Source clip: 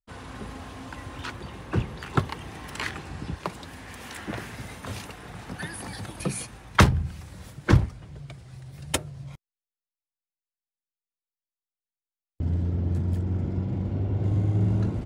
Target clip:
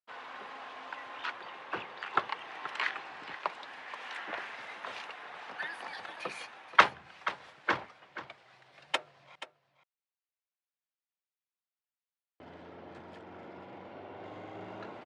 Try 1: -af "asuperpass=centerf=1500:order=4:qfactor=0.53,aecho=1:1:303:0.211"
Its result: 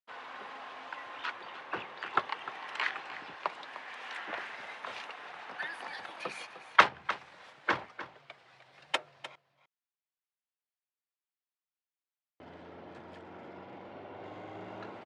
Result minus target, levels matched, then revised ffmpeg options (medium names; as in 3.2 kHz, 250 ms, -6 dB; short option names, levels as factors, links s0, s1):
echo 177 ms early
-af "asuperpass=centerf=1500:order=4:qfactor=0.53,aecho=1:1:480:0.211"